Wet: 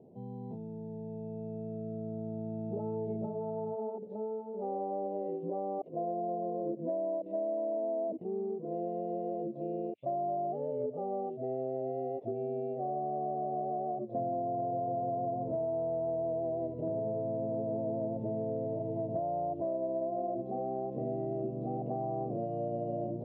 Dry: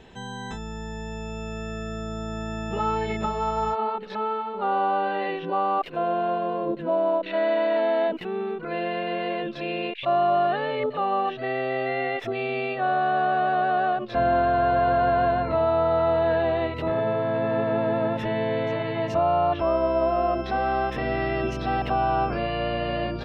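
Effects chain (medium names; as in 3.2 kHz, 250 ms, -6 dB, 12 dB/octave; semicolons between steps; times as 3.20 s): elliptic band-pass 110–650 Hz, stop band 40 dB; compression 5:1, threshold -27 dBFS, peak gain reduction 6.5 dB; trim -4 dB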